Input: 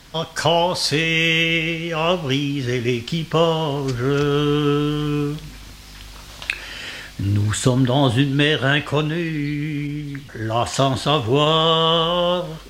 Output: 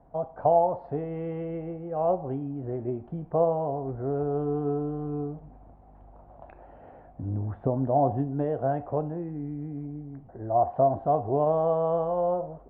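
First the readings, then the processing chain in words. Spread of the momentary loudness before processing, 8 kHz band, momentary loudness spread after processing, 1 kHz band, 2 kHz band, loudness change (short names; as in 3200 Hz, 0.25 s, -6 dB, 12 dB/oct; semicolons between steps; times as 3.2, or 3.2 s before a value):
13 LU, under -40 dB, 12 LU, -5.0 dB, under -30 dB, -8.5 dB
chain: ladder low-pass 790 Hz, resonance 70%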